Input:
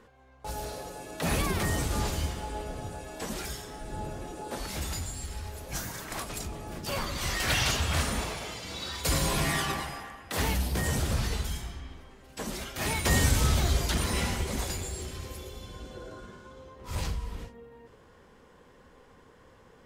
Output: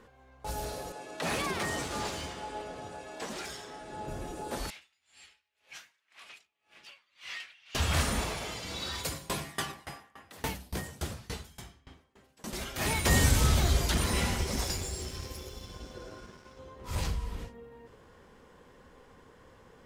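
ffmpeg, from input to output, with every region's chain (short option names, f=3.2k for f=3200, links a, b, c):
-filter_complex "[0:a]asettb=1/sr,asplit=3[a][b][c];[a]atrim=end=0.924[d];[b]atrim=start=0.92:end=4.08,asetpts=PTS-STARTPTS,afade=t=in:d=0.004:c=qsin,afade=t=out:st=3.156:d=0.004:c=qsin,highpass=f=110:p=1,lowshelf=f=200:g=-11,adynamicsmooth=sensitivity=7.5:basefreq=7k[e];[c]atrim=start=4.076[f];[d][e]acrossfade=d=0.004:c1=hsin:c2=qsin[g];[g][f]acrossfade=d=0.004:c1=qsin:c2=hsin,asettb=1/sr,asplit=3[h][i][j];[h]atrim=end=4.704[k];[i]atrim=start=4.7:end=7.75,asetpts=PTS-STARTPTS,afade=t=in:d=0.004:c=qsin,afade=t=out:st=3.046:d=0.004:c=qsin,bandpass=f=2.6k:t=q:w=2.2,aeval=exprs='val(0)*pow(10,-30*(0.5-0.5*cos(2*PI*1.9*n/s))/20)':c=same[l];[j]atrim=start=7.746[m];[k][l]acrossfade=d=0.004:c1=hsin:c2=qsin[n];[n][m]acrossfade=d=0.004:c1=qsin:c2=hsin,asettb=1/sr,asplit=3[o][p][q];[o]atrim=end=9.014[r];[p]atrim=start=9.01:end=12.53,asetpts=PTS-STARTPTS,afade=t=in:d=0.004:c=qsin,afade=t=out:st=3.516:d=0.004:c=qsin,highpass=80,aeval=exprs='val(0)*pow(10,-26*if(lt(mod(3.5*n/s,1),2*abs(3.5)/1000),1-mod(3.5*n/s,1)/(2*abs(3.5)/1000),(mod(3.5*n/s,1)-2*abs(3.5)/1000)/(1-2*abs(3.5)/1000))/20)':c=same[s];[q]atrim=start=12.526[t];[r][s]acrossfade=d=0.004:c1=hsin:c2=qsin[u];[u][t]acrossfade=d=0.004:c1=qsin:c2=hsin,asettb=1/sr,asplit=3[v][w][x];[v]atrim=end=14.384[y];[w]atrim=start=14.38:end=16.59,asetpts=PTS-STARTPTS,afade=t=in:d=0.004:c=qsin,afade=t=out:st=2.206:d=0.004:c=qsin,aeval=exprs='sgn(val(0))*max(abs(val(0))-0.00237,0)':c=same,equalizer=f=5.4k:t=o:w=0.24:g=10[z];[x]atrim=start=16.586[aa];[y][z]acrossfade=d=0.004:c1=hsin:c2=qsin[ab];[ab][aa]acrossfade=d=0.004:c1=qsin:c2=hsin"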